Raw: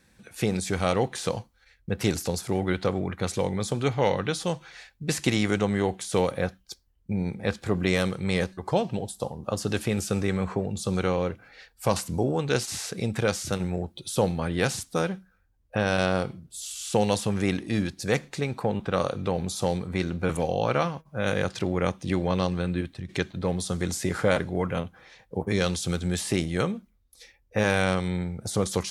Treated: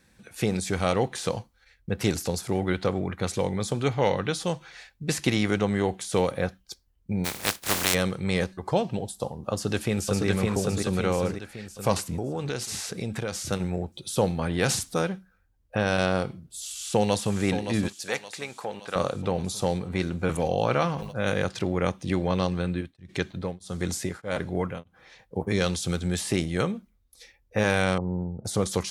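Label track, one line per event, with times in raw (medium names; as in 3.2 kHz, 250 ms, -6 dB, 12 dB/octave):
5.200000	5.670000	peaking EQ 7.6 kHz -6 dB 0.39 oct
7.240000	7.930000	spectral contrast reduction exponent 0.21
9.520000	10.260000	echo throw 560 ms, feedback 50%, level -1.5 dB
12.150000	13.440000	compression, threshold -26 dBFS
14.390000	14.990000	transient shaper attack 0 dB, sustain +7 dB
16.680000	17.350000	echo throw 570 ms, feedback 60%, level -9 dB
17.880000	18.960000	high-pass 970 Hz 6 dB/octave
20.310000	21.300000	decay stretcher at most 56 dB/s
22.660000	25.360000	tremolo of two beating tones nulls at 1.6 Hz
27.980000	28.450000	elliptic low-pass 980 Hz, stop band 80 dB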